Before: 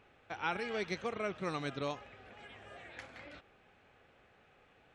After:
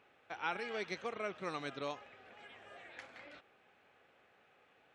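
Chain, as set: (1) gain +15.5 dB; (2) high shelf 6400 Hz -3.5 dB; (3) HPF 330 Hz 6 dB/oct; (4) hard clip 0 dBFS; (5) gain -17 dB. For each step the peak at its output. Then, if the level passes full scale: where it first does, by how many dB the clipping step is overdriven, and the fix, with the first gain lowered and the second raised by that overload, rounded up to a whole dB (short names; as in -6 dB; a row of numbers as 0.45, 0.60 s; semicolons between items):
-5.5, -5.5, -5.0, -5.0, -22.0 dBFS; no overload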